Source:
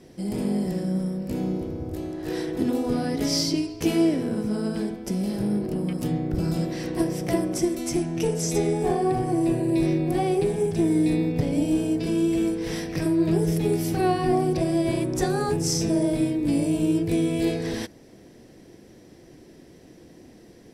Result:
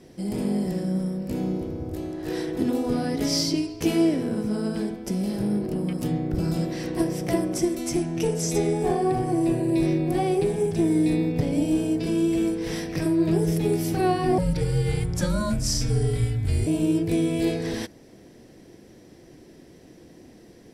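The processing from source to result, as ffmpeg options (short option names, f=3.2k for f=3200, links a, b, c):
-filter_complex "[0:a]asettb=1/sr,asplit=3[a][b][c];[a]atrim=end=14.384[d];[b]atrim=start=14.38:end=16.67,asetpts=PTS-STARTPTS,afade=t=in:d=0.004:c=qsin,afade=t=out:st=2.286:d=0.004:c=qsin,afreqshift=-200[e];[c]atrim=start=16.666[f];[d][e]acrossfade=d=0.004:c1=hsin:c2=qsin[g];[g][f]acrossfade=d=0.004:c1=qsin:c2=hsin"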